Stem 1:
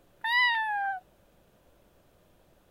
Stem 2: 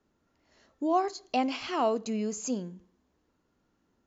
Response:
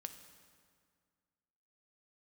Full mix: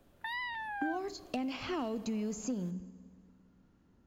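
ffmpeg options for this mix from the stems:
-filter_complex "[0:a]volume=3dB[a];[1:a]bass=f=250:g=10,treble=f=4k:g=-4,acompressor=threshold=-29dB:ratio=4,asoftclip=type=hard:threshold=-24dB,volume=-2dB,asplit=3[b][c][d];[c]volume=-4dB[e];[d]apad=whole_len=119367[f];[a][f]sidechaingate=range=-8dB:threshold=-60dB:ratio=16:detection=peak[g];[2:a]atrim=start_sample=2205[h];[e][h]afir=irnorm=-1:irlink=0[i];[g][b][i]amix=inputs=3:normalize=0,acrossover=split=430|1700[j][k][l];[j]acompressor=threshold=-35dB:ratio=4[m];[k]acompressor=threshold=-42dB:ratio=4[n];[l]acompressor=threshold=-44dB:ratio=4[o];[m][n][o]amix=inputs=3:normalize=0"

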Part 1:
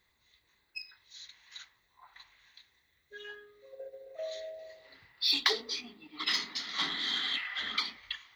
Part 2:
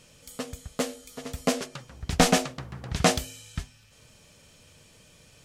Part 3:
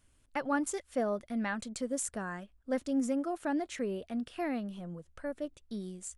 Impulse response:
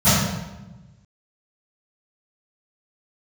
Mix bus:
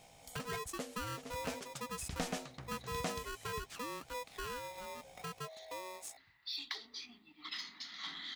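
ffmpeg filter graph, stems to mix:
-filter_complex "[0:a]equalizer=f=470:w=2.6:g=-13,adelay=1250,volume=-7.5dB[a];[1:a]volume=-7.5dB[b];[2:a]aeval=exprs='val(0)+0.001*(sin(2*PI*60*n/s)+sin(2*PI*2*60*n/s)/2+sin(2*PI*3*60*n/s)/3+sin(2*PI*4*60*n/s)/4+sin(2*PI*5*60*n/s)/5)':c=same,aeval=exprs='val(0)*sgn(sin(2*PI*740*n/s))':c=same,volume=-3dB[c];[a][b][c]amix=inputs=3:normalize=0,acompressor=threshold=-44dB:ratio=2"

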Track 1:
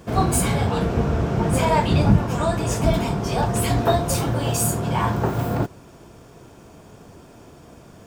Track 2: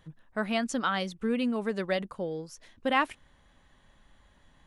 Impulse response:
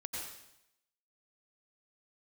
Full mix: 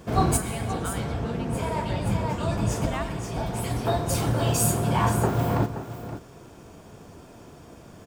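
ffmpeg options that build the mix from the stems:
-filter_complex "[0:a]volume=-2.5dB,asplit=3[a][b][c];[b]volume=-13.5dB[d];[c]volume=-10.5dB[e];[1:a]volume=-11.5dB,asplit=3[f][g][h];[g]volume=-4.5dB[i];[h]apad=whole_len=355668[j];[a][j]sidechaincompress=threshold=-50dB:ratio=8:attack=16:release=1060[k];[2:a]atrim=start_sample=2205[l];[d][i]amix=inputs=2:normalize=0[m];[m][l]afir=irnorm=-1:irlink=0[n];[e]aecho=0:1:525:1[o];[k][f][n][o]amix=inputs=4:normalize=0"

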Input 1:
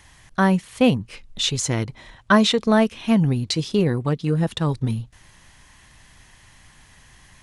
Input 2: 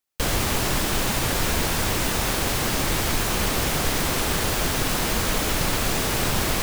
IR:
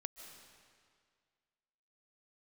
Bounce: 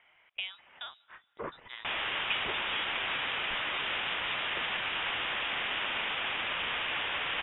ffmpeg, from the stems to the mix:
-filter_complex "[0:a]acompressor=threshold=-20dB:ratio=6,volume=-9.5dB,asplit=2[a][b];[b]volume=-15dB[c];[1:a]adelay=1650,volume=-3dB[d];[2:a]atrim=start_sample=2205[e];[c][e]afir=irnorm=-1:irlink=0[f];[a][d][f]amix=inputs=3:normalize=0,highpass=900,lowpass=f=3.4k:t=q:w=0.5098,lowpass=f=3.4k:t=q:w=0.6013,lowpass=f=3.4k:t=q:w=0.9,lowpass=f=3.4k:t=q:w=2.563,afreqshift=-4000"

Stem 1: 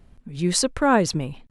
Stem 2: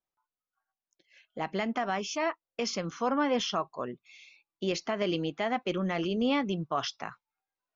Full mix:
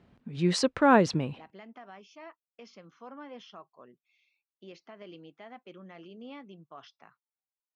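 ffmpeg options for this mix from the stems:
-filter_complex "[0:a]volume=-2dB[a];[1:a]volume=-17.5dB[b];[a][b]amix=inputs=2:normalize=0,highpass=130,lowpass=4.1k"

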